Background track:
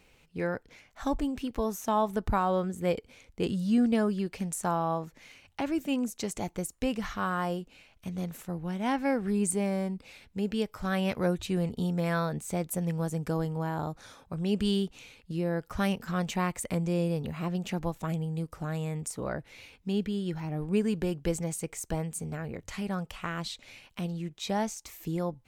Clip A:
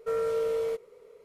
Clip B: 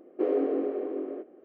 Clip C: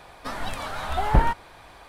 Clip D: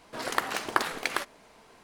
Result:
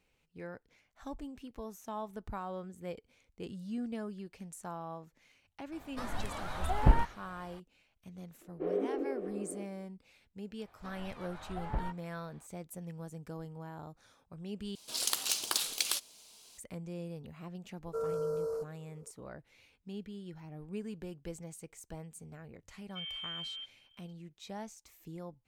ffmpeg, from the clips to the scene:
ffmpeg -i bed.wav -i cue0.wav -i cue1.wav -i cue2.wav -i cue3.wav -filter_complex "[3:a]asplit=2[link_01][link_02];[1:a]asplit=2[link_03][link_04];[0:a]volume=-13.5dB[link_05];[link_01]lowshelf=frequency=410:gain=6[link_06];[2:a]flanger=delay=19.5:depth=4.9:speed=2.9[link_07];[link_02]lowpass=frequency=2900:poles=1[link_08];[4:a]aexciter=amount=6.1:drive=9:freq=2800[link_09];[link_03]asuperstop=centerf=2600:order=12:qfactor=0.89[link_10];[link_04]lowpass=frequency=3100:width_type=q:width=0.5098,lowpass=frequency=3100:width_type=q:width=0.6013,lowpass=frequency=3100:width_type=q:width=0.9,lowpass=frequency=3100:width_type=q:width=2.563,afreqshift=-3600[link_11];[link_05]asplit=2[link_12][link_13];[link_12]atrim=end=14.754[link_14];[link_09]atrim=end=1.83,asetpts=PTS-STARTPTS,volume=-14.5dB[link_15];[link_13]atrim=start=16.576[link_16];[link_06]atrim=end=1.88,asetpts=PTS-STARTPTS,volume=-10dB,afade=type=in:duration=0.004:curve=hsin,afade=type=out:start_time=1.876:duration=0.004:curve=hsin,adelay=5720[link_17];[link_07]atrim=end=1.44,asetpts=PTS-STARTPTS,volume=-5dB,afade=type=in:duration=0.004:curve=hsin,afade=type=out:start_time=1.436:duration=0.004:curve=hsin,adelay=8410[link_18];[link_08]atrim=end=1.88,asetpts=PTS-STARTPTS,volume=-17dB,afade=type=in:duration=0.004:curve=hsin,afade=type=out:start_time=1.876:duration=0.004:curve=hsin,adelay=10590[link_19];[link_10]atrim=end=1.24,asetpts=PTS-STARTPTS,volume=-6.5dB,afade=type=in:duration=0.004:curve=hsin,afade=type=out:start_time=1.236:duration=0.004:curve=hsin,adelay=17870[link_20];[link_11]atrim=end=1.24,asetpts=PTS-STARTPTS,volume=-14dB,afade=type=in:duration=0.004:curve=hsin,afade=type=out:start_time=1.236:duration=0.004:curve=hsin,adelay=22890[link_21];[link_14][link_15]acrossfade=duration=0.004:curve1=hsin:curve2=hsin[link_22];[link_22][link_16]acrossfade=duration=0.004:curve1=hsin:curve2=hsin[link_23];[link_23][link_17][link_18][link_19][link_20][link_21]amix=inputs=6:normalize=0" out.wav

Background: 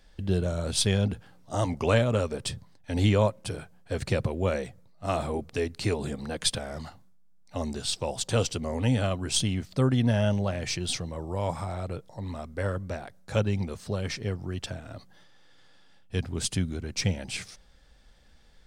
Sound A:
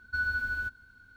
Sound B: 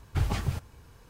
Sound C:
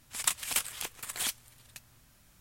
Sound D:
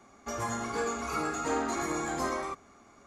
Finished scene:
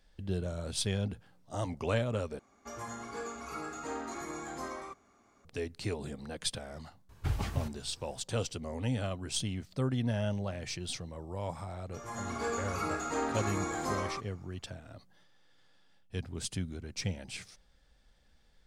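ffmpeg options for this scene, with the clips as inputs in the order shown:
ffmpeg -i bed.wav -i cue0.wav -i cue1.wav -i cue2.wav -i cue3.wav -filter_complex "[4:a]asplit=2[link_01][link_02];[0:a]volume=-8dB[link_03];[link_02]dynaudnorm=framelen=140:gausssize=7:maxgain=15.5dB[link_04];[link_03]asplit=2[link_05][link_06];[link_05]atrim=end=2.394[link_07];[link_01]atrim=end=3.06,asetpts=PTS-STARTPTS,volume=-8.5dB[link_08];[link_06]atrim=start=5.446[link_09];[2:a]atrim=end=1.09,asetpts=PTS-STARTPTS,volume=-5dB,afade=type=in:duration=0.004:curve=hsin,afade=type=out:start_time=1.086:duration=0.004:curve=hsin,adelay=7090[link_10];[link_04]atrim=end=3.06,asetpts=PTS-STARTPTS,volume=-17.5dB,afade=type=in:duration=0.004:curve=hsin,afade=type=out:start_time=3.056:duration=0.004:curve=hsin,adelay=11660[link_11];[link_07][link_08]acrossfade=duration=0.004:curve1=hsin:curve2=hsin[link_12];[link_12][link_09]acrossfade=duration=0.004:curve1=hsin:curve2=hsin[link_13];[link_13][link_10][link_11]amix=inputs=3:normalize=0" out.wav

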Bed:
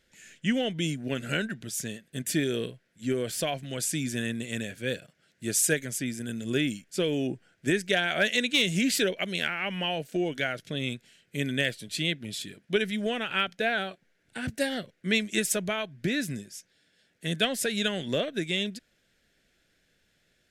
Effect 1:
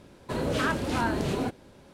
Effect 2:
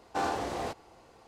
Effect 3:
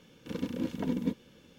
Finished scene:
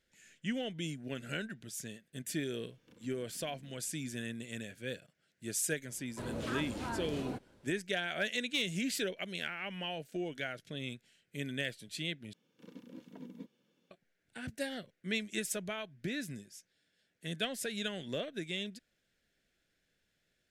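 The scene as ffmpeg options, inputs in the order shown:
ffmpeg -i bed.wav -i cue0.wav -i cue1.wav -i cue2.wav -filter_complex "[3:a]asplit=2[link_01][link_02];[0:a]volume=-9.5dB[link_03];[link_01]acompressor=threshold=-43dB:ratio=6:attack=3.2:release=140:knee=1:detection=peak[link_04];[link_02]highpass=frequency=140:width=0.5412,highpass=frequency=140:width=1.3066[link_05];[link_03]asplit=2[link_06][link_07];[link_06]atrim=end=12.334[link_08];[link_05]atrim=end=1.58,asetpts=PTS-STARTPTS,volume=-17dB[link_09];[link_07]atrim=start=13.906[link_10];[link_04]atrim=end=1.58,asetpts=PTS-STARTPTS,volume=-14dB,afade=type=in:duration=0.004:curve=hsin,afade=type=out:start_time=1.576:duration=0.004:curve=hsin,adelay=2620[link_11];[1:a]atrim=end=1.93,asetpts=PTS-STARTPTS,volume=-12dB,afade=type=in:duration=0.004:curve=hsin,afade=type=out:start_time=1.926:duration=0.004:curve=hsin,adelay=5880[link_12];[link_08][link_09]acrossfade=duration=0.004:curve1=hsin:curve2=hsin[link_13];[link_13][link_10]acrossfade=duration=0.004:curve1=hsin:curve2=hsin[link_14];[link_14][link_11][link_12]amix=inputs=3:normalize=0" out.wav

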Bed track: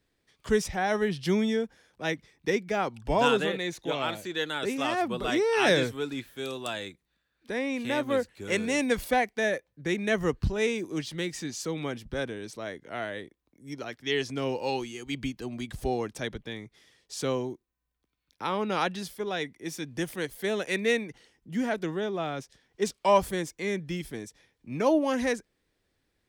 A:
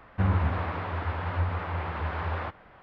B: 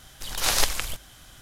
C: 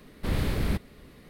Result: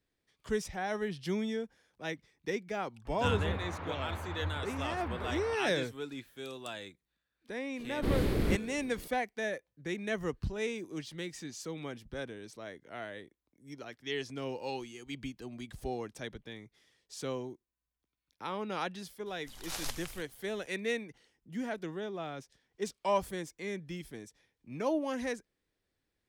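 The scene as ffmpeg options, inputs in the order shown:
ffmpeg -i bed.wav -i cue0.wav -i cue1.wav -i cue2.wav -filter_complex "[0:a]volume=-8dB[link_01];[3:a]equalizer=frequency=360:width=1.1:gain=8.5[link_02];[1:a]atrim=end=2.82,asetpts=PTS-STARTPTS,volume=-9dB,afade=type=in:duration=0.004:curve=hsin,afade=type=out:start_time=2.816:duration=0.004:curve=hsin,adelay=134505S[link_03];[link_02]atrim=end=1.29,asetpts=PTS-STARTPTS,volume=-4.5dB,afade=type=in:duration=0.004:curve=hsin,afade=type=out:start_time=1.286:duration=0.004:curve=hsin,adelay=7790[link_04];[2:a]atrim=end=1.41,asetpts=PTS-STARTPTS,volume=-16.5dB,afade=type=in:duration=0.004:curve=hsin,afade=type=out:start_time=1.406:duration=0.004:curve=hsin,adelay=19260[link_05];[link_01][link_03][link_04][link_05]amix=inputs=4:normalize=0" out.wav

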